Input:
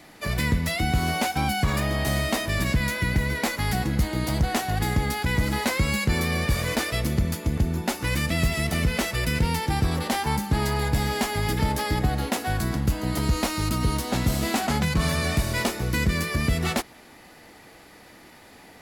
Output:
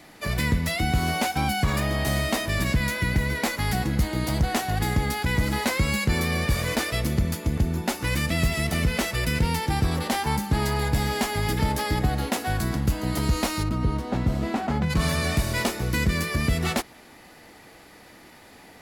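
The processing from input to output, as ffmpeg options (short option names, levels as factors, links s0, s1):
-filter_complex "[0:a]asplit=3[s0][s1][s2];[s0]afade=t=out:st=13.62:d=0.02[s3];[s1]lowpass=f=1100:p=1,afade=t=in:st=13.62:d=0.02,afade=t=out:st=14.89:d=0.02[s4];[s2]afade=t=in:st=14.89:d=0.02[s5];[s3][s4][s5]amix=inputs=3:normalize=0"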